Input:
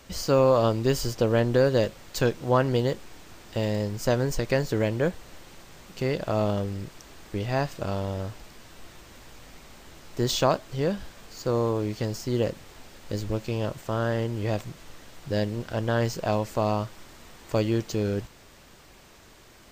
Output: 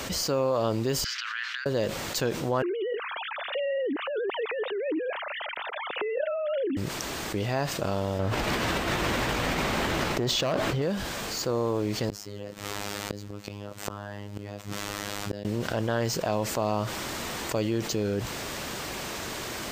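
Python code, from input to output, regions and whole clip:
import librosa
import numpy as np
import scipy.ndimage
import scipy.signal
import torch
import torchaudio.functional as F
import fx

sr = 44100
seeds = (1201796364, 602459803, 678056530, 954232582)

y = fx.chain(x, sr, fx.over_compress(threshold_db=-25.0, ratio=-0.5),
    fx.steep_highpass(hz=1400.0, slope=48),
    fx.air_absorb(metres=220.0), at=(1.04, 1.66))
y = fx.chain(y, sr, fx.sine_speech(),
    fx.over_compress(threshold_db=-32.0, ratio=-1.0), at=(2.62, 6.77))
y = fx.chain(y, sr, fx.bass_treble(bass_db=1, treble_db=-10),
    fx.overload_stage(gain_db=21.0),
    fx.env_flatten(amount_pct=100), at=(8.19, 10.82))
y = fx.chain(y, sr, fx.peak_eq(hz=1300.0, db=3.0, octaves=0.23),
    fx.robotise(hz=102.0),
    fx.gate_flip(shuts_db=-20.0, range_db=-34), at=(12.09, 15.45))
y = fx.highpass(y, sr, hz=130.0, slope=6)
y = fx.env_flatten(y, sr, amount_pct=70)
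y = F.gain(torch.from_numpy(y), -6.5).numpy()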